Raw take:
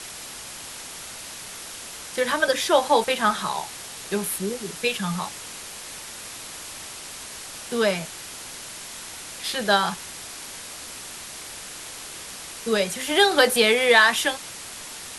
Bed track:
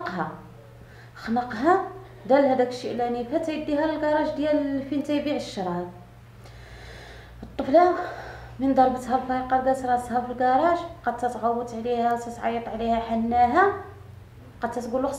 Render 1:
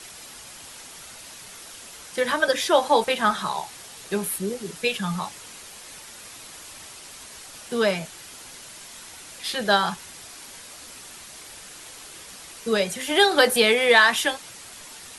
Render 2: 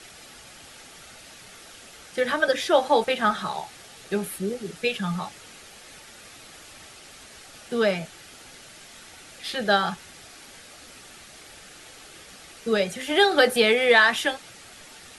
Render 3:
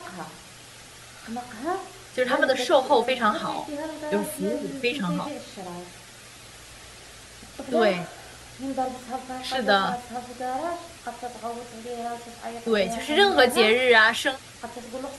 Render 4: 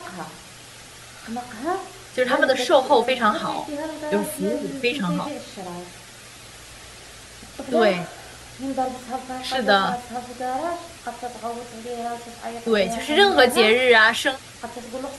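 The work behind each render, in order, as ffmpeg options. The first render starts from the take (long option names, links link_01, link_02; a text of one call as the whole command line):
ffmpeg -i in.wav -af "afftdn=noise_reduction=6:noise_floor=-38" out.wav
ffmpeg -i in.wav -af "highshelf=frequency=5500:gain=-9.5,bandreject=frequency=1000:width=5.7" out.wav
ffmpeg -i in.wav -i bed.wav -filter_complex "[1:a]volume=-9dB[link_01];[0:a][link_01]amix=inputs=2:normalize=0" out.wav
ffmpeg -i in.wav -af "volume=3dB,alimiter=limit=-3dB:level=0:latency=1" out.wav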